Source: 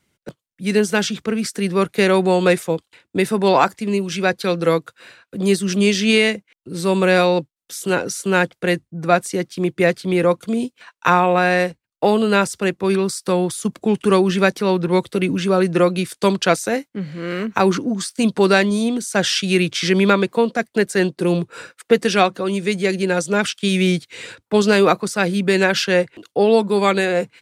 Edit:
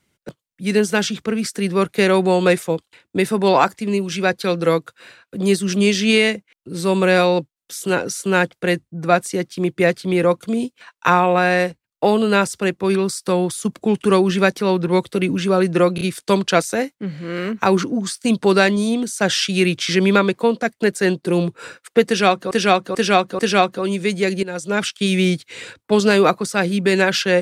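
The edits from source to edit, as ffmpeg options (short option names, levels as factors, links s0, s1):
-filter_complex "[0:a]asplit=7[s0][s1][s2][s3][s4][s5][s6];[s0]atrim=end=15.982[s7];[s1]atrim=start=15.948:end=15.982[s8];[s2]atrim=start=15.948:end=22.452[s9];[s3]atrim=start=22.008:end=22.452[s10];[s4]atrim=start=22.008:end=22.452[s11];[s5]atrim=start=22.008:end=23.05,asetpts=PTS-STARTPTS,afade=t=out:st=1.038:d=0.004:c=hsin:silence=0.199526[s12];[s6]atrim=start=23.05,asetpts=PTS-STARTPTS,afade=t=in:d=0.44:silence=0.199526[s13];[s7][s8]acrossfade=d=0.004:c1=hsin:c2=hsin[s14];[s14][s9]acrossfade=d=0.004:c1=hsin:c2=hsin[s15];[s15][s10]acrossfade=d=0.004:c1=hsin:c2=hsin[s16];[s16][s11]acrossfade=d=0.004:c1=hsin:c2=hsin[s17];[s12][s13]concat=n=2:v=0:a=1[s18];[s17][s18]acrossfade=d=0.004:c1=hsin:c2=hsin"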